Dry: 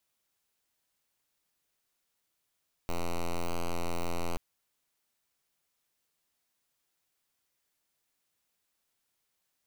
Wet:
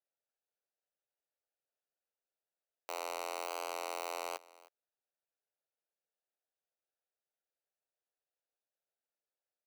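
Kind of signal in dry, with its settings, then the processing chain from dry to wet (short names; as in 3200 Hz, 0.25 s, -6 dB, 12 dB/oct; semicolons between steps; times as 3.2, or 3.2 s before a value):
pulse 85.8 Hz, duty 5% -30 dBFS 1.48 s
Wiener smoothing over 41 samples; HPF 500 Hz 24 dB/oct; echo 0.312 s -21 dB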